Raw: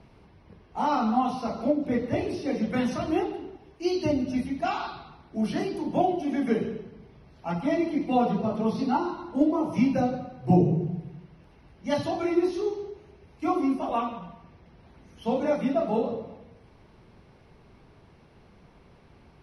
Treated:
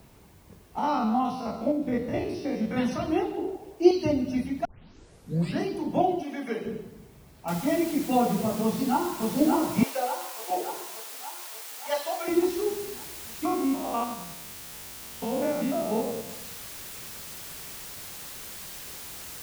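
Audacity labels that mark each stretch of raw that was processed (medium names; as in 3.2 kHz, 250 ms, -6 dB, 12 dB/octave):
0.780000	2.780000	spectrogram pixelated in time every 50 ms
3.370000	3.910000	high-order bell 520 Hz +10 dB
4.650000	4.650000	tape start 0.97 s
6.230000	6.660000	high-pass 660 Hz 6 dB/octave
7.480000	7.480000	noise floor step -63 dB -41 dB
8.620000	9.320000	echo throw 580 ms, feedback 65%, level -3 dB
9.830000	12.280000	high-pass 510 Hz 24 dB/octave
13.450000	16.300000	spectrogram pixelated in time every 100 ms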